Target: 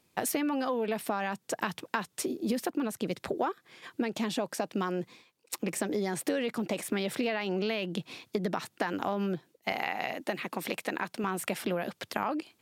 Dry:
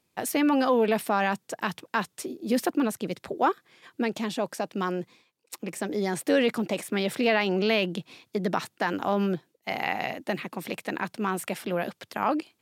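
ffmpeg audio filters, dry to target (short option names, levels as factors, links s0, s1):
-filter_complex "[0:a]acompressor=threshold=0.0282:ratio=10,asettb=1/sr,asplit=3[s0][s1][s2];[s0]atrim=end=9.724[s3];[s1]atrim=start=9.72:end=11.24,asetpts=PTS-STARTPTS,afade=t=in:d=0.004:c=qsin,afade=t=out:st=1.516:d=0.004:c=qsin,lowshelf=f=150:g=-11.5[s4];[s2]atrim=start=11.236[s5];[s3][s4]acrossfade=d=0.004:c1=hsin:c2=qsin[s6];[s6][s5]acrossfade=d=0.004:c1=qsin:c2=hsin,volume=1.58"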